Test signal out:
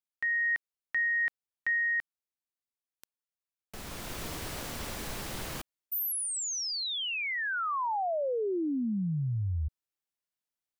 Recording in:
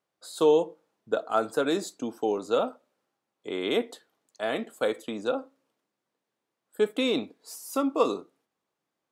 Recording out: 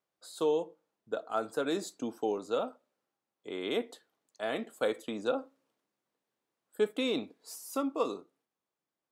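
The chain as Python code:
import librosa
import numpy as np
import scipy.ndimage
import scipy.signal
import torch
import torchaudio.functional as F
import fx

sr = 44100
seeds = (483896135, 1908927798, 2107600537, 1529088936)

y = fx.rider(x, sr, range_db=3, speed_s=0.5)
y = y * 10.0 ** (-5.5 / 20.0)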